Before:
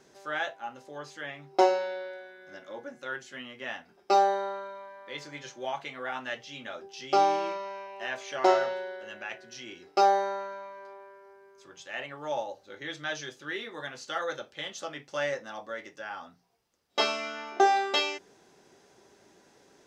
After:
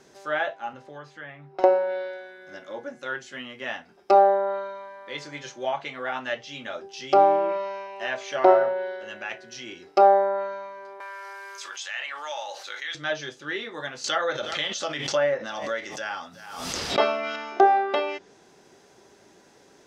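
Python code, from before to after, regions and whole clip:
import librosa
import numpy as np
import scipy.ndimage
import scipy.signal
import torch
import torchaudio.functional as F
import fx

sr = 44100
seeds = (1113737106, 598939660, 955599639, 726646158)

y = fx.chain(x, sr, fx.curve_eq(hz=(110.0, 320.0, 1600.0, 6800.0), db=(0, -8, -5, -21)),
    fx.band_squash(depth_pct=70), at=(0.73, 1.64))
y = fx.chain(y, sr, fx.highpass(hz=1400.0, slope=12),
    fx.env_flatten(amount_pct=70), at=(11.0, 12.95))
y = fx.chain(y, sr, fx.high_shelf(hz=2800.0, db=10.5),
    fx.echo_single(ms=366, db=-23.5),
    fx.pre_swell(db_per_s=52.0), at=(14.04, 17.36))
y = fx.dynamic_eq(y, sr, hz=610.0, q=5.7, threshold_db=-44.0, ratio=4.0, max_db=6)
y = fx.env_lowpass_down(y, sr, base_hz=1500.0, full_db=-23.0)
y = y * 10.0 ** (4.5 / 20.0)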